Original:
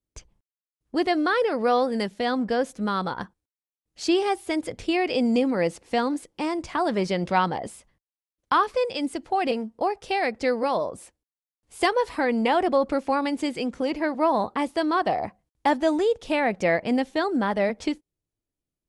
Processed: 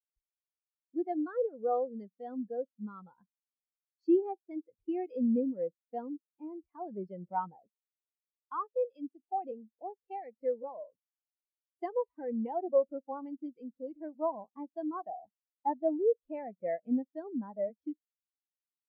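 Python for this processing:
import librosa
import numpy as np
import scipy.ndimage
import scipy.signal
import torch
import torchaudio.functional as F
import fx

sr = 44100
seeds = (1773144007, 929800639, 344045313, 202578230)

y = fx.spectral_expand(x, sr, expansion=2.5)
y = y * librosa.db_to_amplitude(-6.5)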